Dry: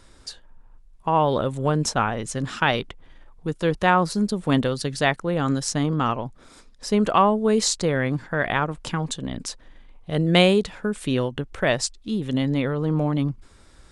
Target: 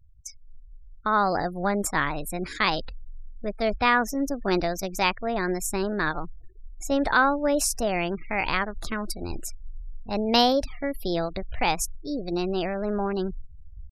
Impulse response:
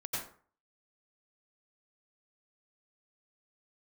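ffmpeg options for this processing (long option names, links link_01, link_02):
-af "asubboost=boost=6:cutoff=51,asetrate=58866,aresample=44100,atempo=0.749154,afftfilt=real='re*gte(hypot(re,im),0.0126)':imag='im*gte(hypot(re,im),0.0126)':win_size=1024:overlap=0.75,volume=-2.5dB"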